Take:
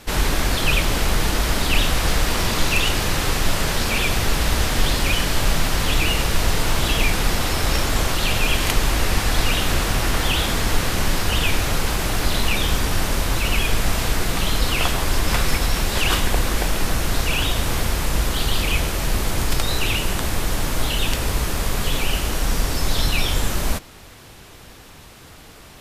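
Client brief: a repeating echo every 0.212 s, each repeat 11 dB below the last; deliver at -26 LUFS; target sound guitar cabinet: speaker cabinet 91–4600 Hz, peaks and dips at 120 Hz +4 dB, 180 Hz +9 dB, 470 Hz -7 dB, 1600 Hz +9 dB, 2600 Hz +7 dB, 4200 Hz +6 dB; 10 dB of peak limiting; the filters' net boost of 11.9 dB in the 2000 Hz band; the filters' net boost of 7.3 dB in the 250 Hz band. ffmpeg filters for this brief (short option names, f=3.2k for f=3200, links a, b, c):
-af "equalizer=f=250:t=o:g=5.5,equalizer=f=2k:t=o:g=7,alimiter=limit=-9.5dB:level=0:latency=1,highpass=91,equalizer=f=120:t=q:w=4:g=4,equalizer=f=180:t=q:w=4:g=9,equalizer=f=470:t=q:w=4:g=-7,equalizer=f=1.6k:t=q:w=4:g=9,equalizer=f=2.6k:t=q:w=4:g=7,equalizer=f=4.2k:t=q:w=4:g=6,lowpass=f=4.6k:w=0.5412,lowpass=f=4.6k:w=1.3066,aecho=1:1:212|424|636:0.282|0.0789|0.0221,volume=-10dB"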